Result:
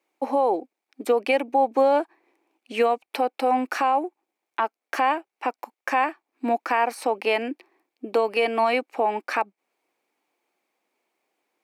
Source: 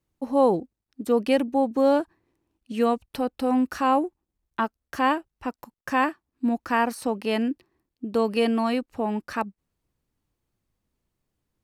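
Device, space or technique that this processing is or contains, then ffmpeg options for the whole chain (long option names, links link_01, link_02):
laptop speaker: -af "highpass=frequency=330:width=0.5412,highpass=frequency=330:width=1.3066,equalizer=frequency=780:width_type=o:width=0.5:gain=7,equalizer=frequency=2300:width_type=o:width=0.31:gain=11,highshelf=frequency=5100:gain=-5.5,alimiter=limit=-19dB:level=0:latency=1:release=324,volume=7dB"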